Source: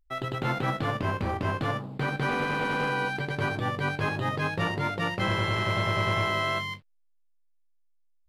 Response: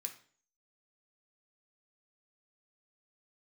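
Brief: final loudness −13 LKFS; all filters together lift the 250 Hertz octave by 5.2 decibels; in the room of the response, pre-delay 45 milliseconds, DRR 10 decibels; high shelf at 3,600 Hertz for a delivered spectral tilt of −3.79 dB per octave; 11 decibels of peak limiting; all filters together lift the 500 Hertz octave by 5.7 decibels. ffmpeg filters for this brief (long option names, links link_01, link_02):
-filter_complex "[0:a]equalizer=frequency=250:width_type=o:gain=5.5,equalizer=frequency=500:width_type=o:gain=5.5,highshelf=frequency=3600:gain=8.5,alimiter=limit=-22dB:level=0:latency=1,asplit=2[link_01][link_02];[1:a]atrim=start_sample=2205,adelay=45[link_03];[link_02][link_03]afir=irnorm=-1:irlink=0,volume=-6dB[link_04];[link_01][link_04]amix=inputs=2:normalize=0,volume=17.5dB"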